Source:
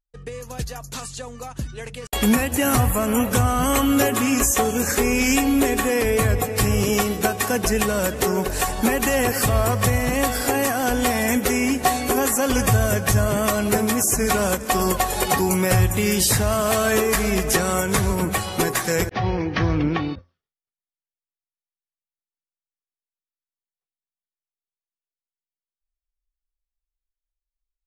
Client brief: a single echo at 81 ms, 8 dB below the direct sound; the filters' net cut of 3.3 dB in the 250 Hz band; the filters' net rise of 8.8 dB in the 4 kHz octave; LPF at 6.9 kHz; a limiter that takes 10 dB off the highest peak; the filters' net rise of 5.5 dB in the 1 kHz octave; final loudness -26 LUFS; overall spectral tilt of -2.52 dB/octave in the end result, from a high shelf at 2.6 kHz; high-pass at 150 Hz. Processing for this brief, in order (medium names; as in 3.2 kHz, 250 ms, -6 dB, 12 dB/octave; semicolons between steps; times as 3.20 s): high-pass 150 Hz; low-pass 6.9 kHz; peaking EQ 250 Hz -3.5 dB; peaking EQ 1 kHz +6.5 dB; treble shelf 2.6 kHz +6 dB; peaking EQ 4 kHz +6.5 dB; peak limiter -11.5 dBFS; delay 81 ms -8 dB; trim -5.5 dB